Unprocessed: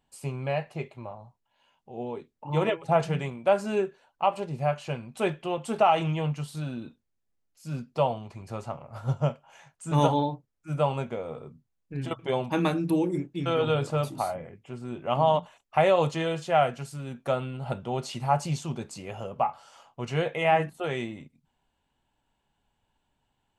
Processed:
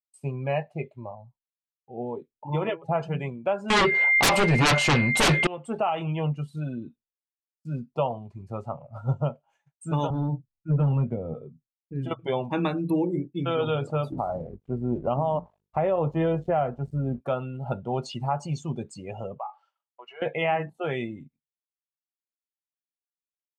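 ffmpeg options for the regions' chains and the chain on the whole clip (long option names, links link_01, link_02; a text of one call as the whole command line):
ffmpeg -i in.wav -filter_complex "[0:a]asettb=1/sr,asplit=3[link_01][link_02][link_03];[link_01]atrim=end=3.704[link_04];[link_02]atrim=start=3.7:end=5.47,asetpts=PTS-STARTPTS,afade=type=in:duration=0.004:curve=qsin,afade=type=out:start_time=1.766:duration=0.004:curve=qsin,aeval=exprs='val(0)+0.00708*sin(2*PI*2100*n/s)':channel_layout=same,acontrast=41,aeval=exprs='0.501*sin(PI/2*8.91*val(0)/0.501)':channel_layout=same[link_05];[link_03]atrim=start=5.466[link_06];[link_04][link_05]acrossfade=duration=0.004:curve1=hsin:curve2=qsin[link_07];[link_07][link_06]acrossfade=duration=0.004:curve1=qsin:curve2=hsin,asettb=1/sr,asplit=3[link_08][link_09][link_10];[link_08]atrim=end=10.104[link_11];[link_09]atrim=start=10.1:end=11.34,asetpts=PTS-STARTPTS,afade=type=in:duration=0.004:curve=qsin,afade=type=out:start_time=1.236:duration=0.004:curve=qsin,bass=frequency=250:gain=10,treble=frequency=4000:gain=-10,acrossover=split=380|3000[link_12][link_13][link_14];[link_13]acompressor=threshold=-35dB:ratio=5:attack=3.2:release=140:knee=2.83:detection=peak[link_15];[link_12][link_15][link_14]amix=inputs=3:normalize=0,volume=20.5dB,asoftclip=hard,volume=-20.5dB[link_16];[link_10]atrim=start=11.336[link_17];[link_11][link_16]acrossfade=duration=0.004:curve1=hsin:curve2=qsin[link_18];[link_18][link_17]acrossfade=duration=0.004:curve1=qsin:curve2=hsin,asettb=1/sr,asplit=3[link_19][link_20][link_21];[link_19]atrim=end=14.124[link_22];[link_20]atrim=start=14.12:end=17.21,asetpts=PTS-STARTPTS,afade=type=in:duration=0.004:curve=qsin,afade=type=out:start_time=3.086:duration=0.004:curve=qsin,tiltshelf=frequency=1500:gain=8.5,aeval=exprs='val(0)+0.00447*(sin(2*PI*50*n/s)+sin(2*PI*2*50*n/s)/2+sin(2*PI*3*50*n/s)/3+sin(2*PI*4*50*n/s)/4+sin(2*PI*5*50*n/s)/5)':channel_layout=same,aeval=exprs='sgn(val(0))*max(abs(val(0))-0.00473,0)':channel_layout=same[link_23];[link_21]atrim=start=17.206[link_24];[link_22][link_23]acrossfade=duration=0.004:curve1=hsin:curve2=qsin[link_25];[link_25][link_24]acrossfade=duration=0.004:curve1=qsin:curve2=hsin,asettb=1/sr,asplit=3[link_26][link_27][link_28];[link_26]atrim=end=19.384[link_29];[link_27]atrim=start=19.38:end=20.22,asetpts=PTS-STARTPTS,afade=type=in:duration=0.004:curve=qsin,afade=type=out:start_time=0.836:duration=0.004:curve=qsin,acompressor=threshold=-33dB:ratio=2.5:attack=3.2:release=140:knee=1:detection=peak,highpass=740,lowpass=3300[link_30];[link_28]atrim=start=20.216[link_31];[link_29][link_30]acrossfade=duration=0.004:curve1=hsin:curve2=qsin[link_32];[link_32][link_31]acrossfade=duration=0.004:curve1=qsin:curve2=hsin,afftdn=noise_reduction=19:noise_floor=-39,alimiter=limit=-18dB:level=0:latency=1:release=354,agate=range=-33dB:threshold=-57dB:ratio=3:detection=peak,volume=2dB" out.wav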